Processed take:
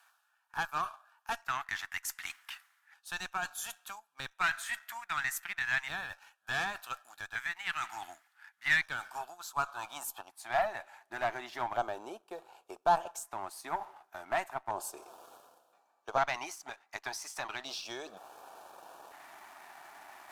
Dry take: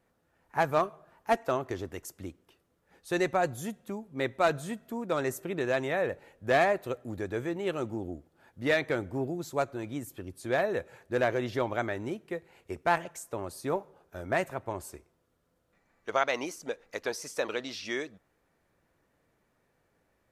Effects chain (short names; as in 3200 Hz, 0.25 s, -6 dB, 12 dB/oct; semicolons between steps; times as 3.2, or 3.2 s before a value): high-pass sweep 1700 Hz -> 430 Hz, 9.13–11.2; reverse; upward compressor, threshold -29 dBFS; reverse; sample leveller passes 1; in parallel at 0 dB: compressor, threshold -35 dBFS, peak gain reduction 17.5 dB; on the sum: resonant low shelf 610 Hz -8 dB, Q 3; added harmonics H 4 -24 dB, 8 -39 dB, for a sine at -6 dBFS; LFO notch square 0.34 Hz 490–2000 Hz; gain -8.5 dB